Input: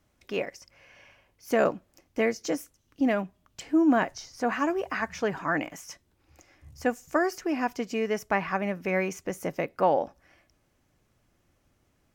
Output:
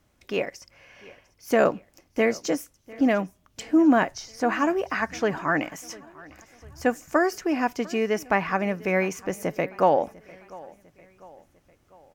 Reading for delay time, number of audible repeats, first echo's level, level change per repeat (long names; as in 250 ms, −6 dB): 699 ms, 3, −22.0 dB, −6.0 dB